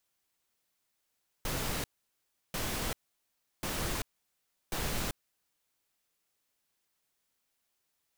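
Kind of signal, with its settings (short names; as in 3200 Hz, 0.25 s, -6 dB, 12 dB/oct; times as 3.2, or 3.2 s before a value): noise bursts pink, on 0.39 s, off 0.70 s, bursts 4, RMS -34 dBFS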